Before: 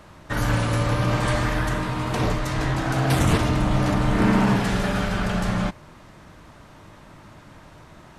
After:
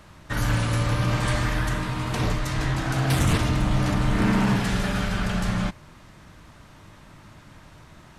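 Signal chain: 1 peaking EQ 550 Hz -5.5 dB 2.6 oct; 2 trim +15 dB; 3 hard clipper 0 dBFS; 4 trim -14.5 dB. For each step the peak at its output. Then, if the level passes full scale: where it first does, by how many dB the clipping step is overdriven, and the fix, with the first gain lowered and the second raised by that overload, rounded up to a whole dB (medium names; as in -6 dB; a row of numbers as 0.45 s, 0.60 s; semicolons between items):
-11.0 dBFS, +4.0 dBFS, 0.0 dBFS, -14.5 dBFS; step 2, 4.0 dB; step 2 +11 dB, step 4 -10.5 dB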